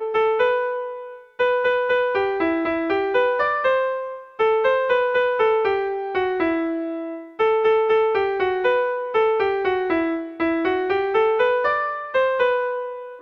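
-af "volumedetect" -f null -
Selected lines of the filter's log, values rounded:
mean_volume: -20.8 dB
max_volume: -8.4 dB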